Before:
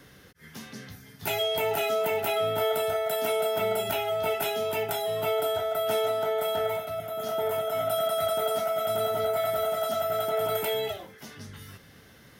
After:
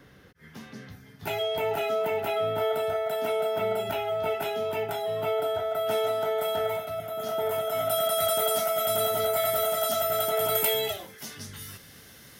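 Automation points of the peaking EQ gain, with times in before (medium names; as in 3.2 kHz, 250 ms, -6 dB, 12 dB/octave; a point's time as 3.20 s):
peaking EQ 11 kHz 2.5 oct
5.58 s -9.5 dB
6.12 s -0.5 dB
7.39 s -0.5 dB
8.30 s +10.5 dB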